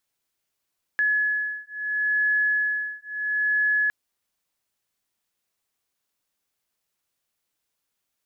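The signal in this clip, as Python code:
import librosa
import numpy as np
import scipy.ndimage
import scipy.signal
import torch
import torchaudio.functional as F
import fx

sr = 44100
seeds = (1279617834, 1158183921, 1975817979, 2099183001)

y = fx.two_tone_beats(sr, length_s=2.91, hz=1700.0, beat_hz=0.74, level_db=-24.5)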